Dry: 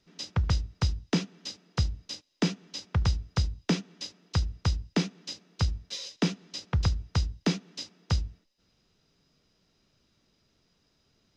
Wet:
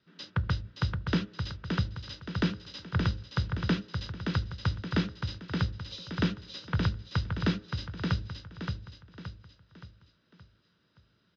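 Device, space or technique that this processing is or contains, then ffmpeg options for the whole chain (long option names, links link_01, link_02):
guitar cabinet: -filter_complex "[0:a]highpass=96,equalizer=frequency=110:width_type=q:width=4:gain=3,equalizer=frequency=260:width_type=q:width=4:gain=-3,equalizer=frequency=430:width_type=q:width=4:gain=-3,equalizer=frequency=750:width_type=q:width=4:gain=-9,equalizer=frequency=1500:width_type=q:width=4:gain=7,equalizer=frequency=2300:width_type=q:width=4:gain=-5,lowpass=frequency=4100:width=0.5412,lowpass=frequency=4100:width=1.3066,bandreject=frequency=104.6:width_type=h:width=4,bandreject=frequency=209.2:width_type=h:width=4,bandreject=frequency=313.8:width_type=h:width=4,bandreject=frequency=418.4:width_type=h:width=4,bandreject=frequency=523:width_type=h:width=4,bandreject=frequency=627.6:width_type=h:width=4,asettb=1/sr,asplit=3[link_01][link_02][link_03];[link_01]atrim=end=5.754[link_04];[link_02]atrim=start=5.75:end=6.2,asetpts=PTS-STARTPTS,afade=type=in:duration=0.004:curve=qsin,afade=type=out:start_time=0.446:duration=0.004:curve=qsin,equalizer=frequency=1700:width_type=o:width=0.81:gain=-13.5[link_05];[link_03]atrim=start=6.196[link_06];[link_04][link_05]acrossfade=duration=0.004:curve1=hsin:curve2=qsin[link_07];[link_07][link_06]acrossfade=duration=0.004:curve1=qsin:curve2=hsin,aecho=1:1:572|1144|1716|2288|2860:0.562|0.247|0.109|0.0479|0.0211"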